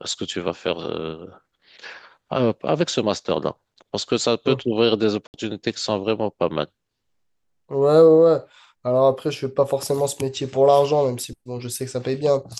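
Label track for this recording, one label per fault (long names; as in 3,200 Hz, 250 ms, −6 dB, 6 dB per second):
5.270000	5.340000	drop-out 69 ms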